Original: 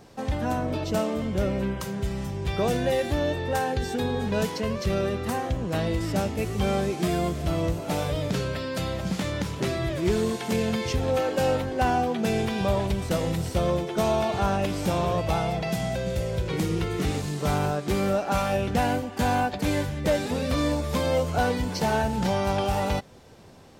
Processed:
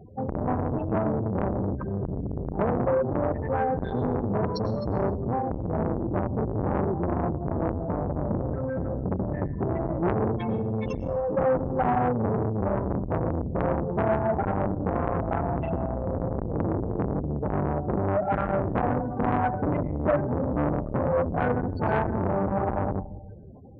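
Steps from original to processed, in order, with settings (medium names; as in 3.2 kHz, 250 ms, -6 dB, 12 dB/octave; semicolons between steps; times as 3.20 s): octave divider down 1 oct, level 0 dB; spectral gate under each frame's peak -10 dB strong; high-pass 56 Hz 6 dB/octave; 10.43–11.30 s: compression 4:1, threshold -27 dBFS, peak gain reduction 5.5 dB; on a send at -12.5 dB: reverberation RT60 0.80 s, pre-delay 88 ms; on the sum: transformer saturation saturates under 900 Hz; trim +4 dB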